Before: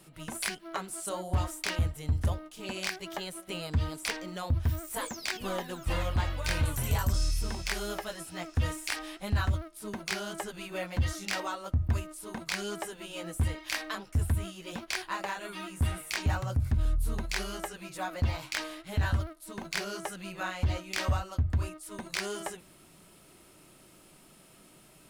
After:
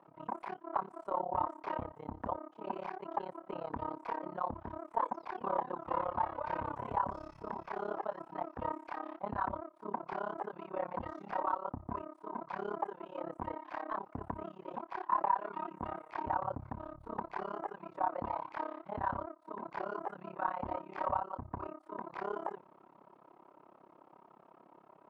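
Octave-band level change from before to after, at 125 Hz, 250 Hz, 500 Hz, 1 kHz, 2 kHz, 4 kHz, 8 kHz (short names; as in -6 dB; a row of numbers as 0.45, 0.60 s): -20.0 dB, -6.0 dB, -1.0 dB, +4.5 dB, -12.5 dB, under -25 dB, under -40 dB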